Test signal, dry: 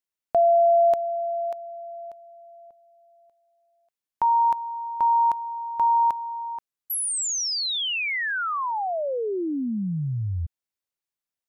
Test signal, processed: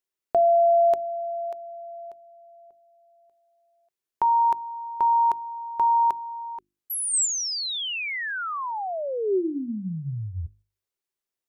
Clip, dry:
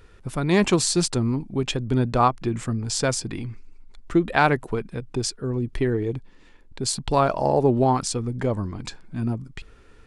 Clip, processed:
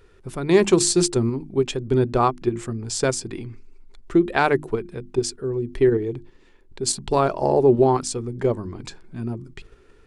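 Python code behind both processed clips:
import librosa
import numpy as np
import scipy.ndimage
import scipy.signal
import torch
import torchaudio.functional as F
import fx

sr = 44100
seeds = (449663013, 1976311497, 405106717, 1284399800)

p1 = fx.dynamic_eq(x, sr, hz=7900.0, q=1.4, threshold_db=-40.0, ratio=4.0, max_db=4)
p2 = fx.hum_notches(p1, sr, base_hz=50, count=7)
p3 = fx.level_steps(p2, sr, step_db=23)
p4 = p2 + (p3 * 10.0 ** (-2.0 / 20.0))
p5 = fx.peak_eq(p4, sr, hz=380.0, db=9.5, octaves=0.36)
y = p5 * 10.0 ** (-4.0 / 20.0)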